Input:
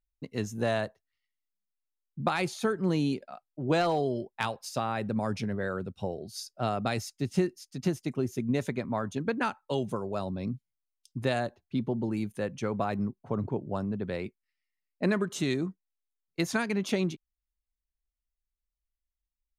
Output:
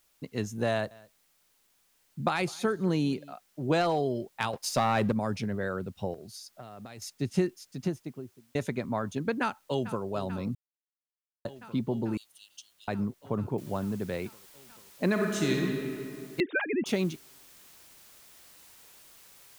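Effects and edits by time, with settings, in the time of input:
0:00.70–0:03.33: single-tap delay 209 ms −23.5 dB
0:04.53–0:05.12: leveller curve on the samples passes 2
0:06.14–0:07.02: downward compressor 16 to 1, threshold −40 dBFS
0:07.57–0:08.55: fade out and dull
0:09.41–0:10.05: delay throw 440 ms, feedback 85%, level −14.5 dB
0:10.55–0:11.45: silence
0:12.17–0:12.88: Chebyshev high-pass filter 2,800 Hz, order 8
0:13.58: noise floor change −69 dB −55 dB
0:15.10–0:15.60: thrown reverb, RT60 2.6 s, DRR 0 dB
0:16.40–0:16.86: three sine waves on the formant tracks

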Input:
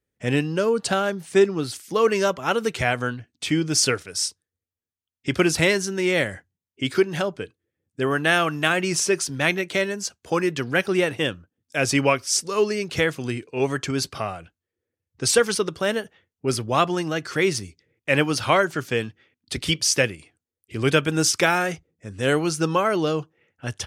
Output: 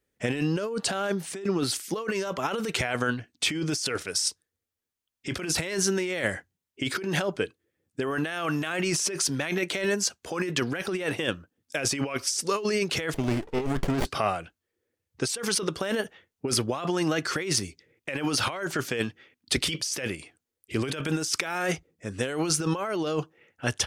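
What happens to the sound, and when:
0:13.14–0:14.05: windowed peak hold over 33 samples
whole clip: parametric band 100 Hz −6.5 dB 1.8 octaves; compressor whose output falls as the input rises −28 dBFS, ratio −1

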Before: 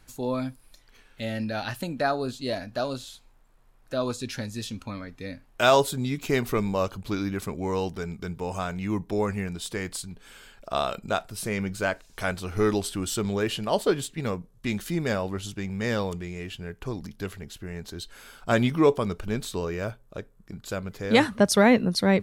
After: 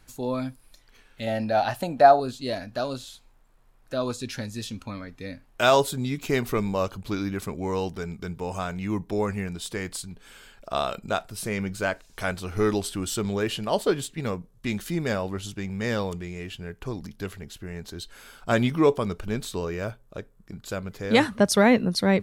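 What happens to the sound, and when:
0:01.27–0:02.20: parametric band 720 Hz +13.5 dB 0.79 octaves

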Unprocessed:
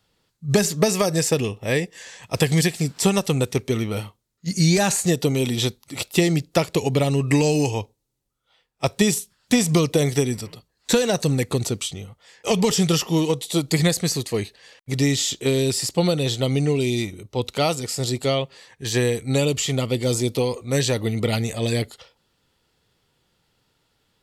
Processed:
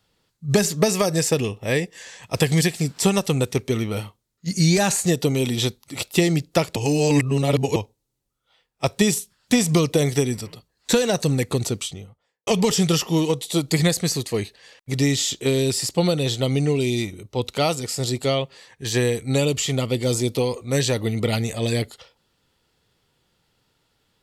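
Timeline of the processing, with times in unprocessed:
0:06.76–0:07.76: reverse
0:11.76–0:12.47: fade out and dull

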